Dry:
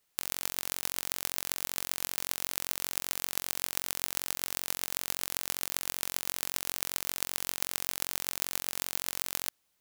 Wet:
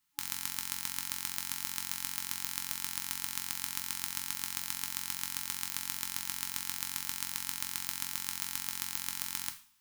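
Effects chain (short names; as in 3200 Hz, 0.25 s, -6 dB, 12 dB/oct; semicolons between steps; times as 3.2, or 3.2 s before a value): two-slope reverb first 0.4 s, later 1.8 s, from -26 dB, DRR 4.5 dB; FFT band-reject 300–840 Hz; gain -3.5 dB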